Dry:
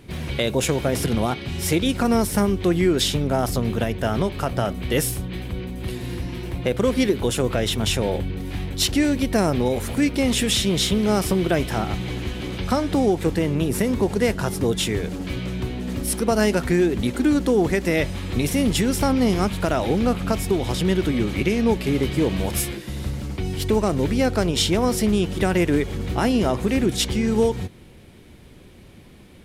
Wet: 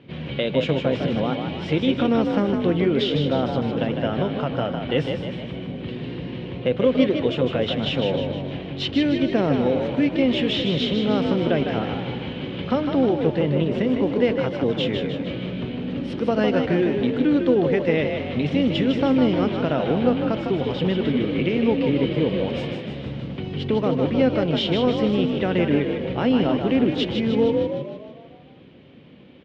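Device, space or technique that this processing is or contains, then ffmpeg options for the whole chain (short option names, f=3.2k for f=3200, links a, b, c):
frequency-shifting delay pedal into a guitar cabinet: -filter_complex "[0:a]asplit=8[a][b][c][d][e][f][g][h];[b]adelay=154,afreqshift=46,volume=-6dB[i];[c]adelay=308,afreqshift=92,volume=-11.4dB[j];[d]adelay=462,afreqshift=138,volume=-16.7dB[k];[e]adelay=616,afreqshift=184,volume=-22.1dB[l];[f]adelay=770,afreqshift=230,volume=-27.4dB[m];[g]adelay=924,afreqshift=276,volume=-32.8dB[n];[h]adelay=1078,afreqshift=322,volume=-38.1dB[o];[a][i][j][k][l][m][n][o]amix=inputs=8:normalize=0,highpass=110,equalizer=f=150:t=q:w=4:g=7,equalizer=f=260:t=q:w=4:g=6,equalizer=f=520:t=q:w=4:g=7,equalizer=f=3k:t=q:w=4:g=6,lowpass=f=3.7k:w=0.5412,lowpass=f=3.7k:w=1.3066,volume=-4.5dB"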